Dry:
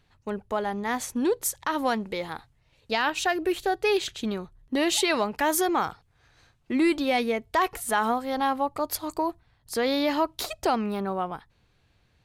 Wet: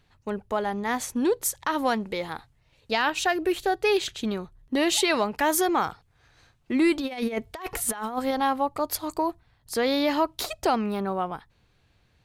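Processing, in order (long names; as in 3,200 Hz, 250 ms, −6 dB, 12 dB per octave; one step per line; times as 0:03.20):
0:07.00–0:08.31: compressor whose output falls as the input rises −29 dBFS, ratio −0.5
level +1 dB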